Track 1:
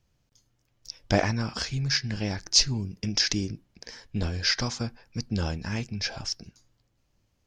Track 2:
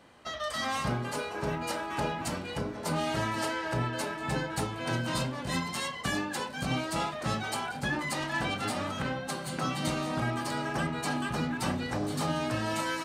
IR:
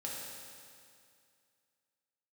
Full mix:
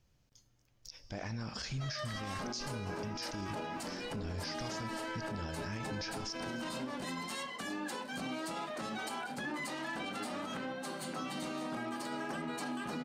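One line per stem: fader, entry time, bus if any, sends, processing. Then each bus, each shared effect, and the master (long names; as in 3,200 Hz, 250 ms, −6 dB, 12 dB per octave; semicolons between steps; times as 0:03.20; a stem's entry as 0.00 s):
−1.5 dB, 0.00 s, send −16.5 dB, downward compressor, threshold −29 dBFS, peak gain reduction 13.5 dB
−4.0 dB, 1.55 s, no send, low shelf with overshoot 160 Hz −11.5 dB, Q 1.5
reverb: on, RT60 2.3 s, pre-delay 3 ms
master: brickwall limiter −31 dBFS, peak gain reduction 18.5 dB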